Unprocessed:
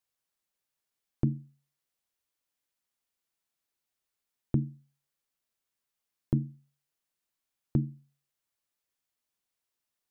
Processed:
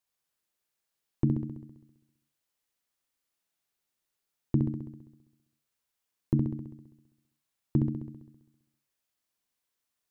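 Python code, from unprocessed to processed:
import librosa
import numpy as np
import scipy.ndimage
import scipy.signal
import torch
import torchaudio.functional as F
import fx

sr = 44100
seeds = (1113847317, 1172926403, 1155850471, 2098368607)

p1 = fx.dynamic_eq(x, sr, hz=300.0, q=2.4, threshold_db=-45.0, ratio=4.0, max_db=4)
y = p1 + fx.room_flutter(p1, sr, wall_m=11.3, rt60_s=0.99, dry=0)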